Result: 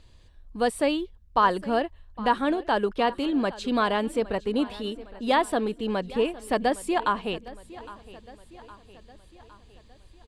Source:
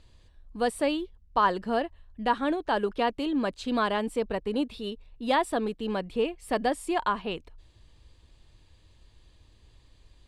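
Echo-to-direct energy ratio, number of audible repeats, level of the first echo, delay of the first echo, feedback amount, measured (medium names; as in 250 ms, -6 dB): -17.0 dB, 4, -18.5 dB, 811 ms, 54%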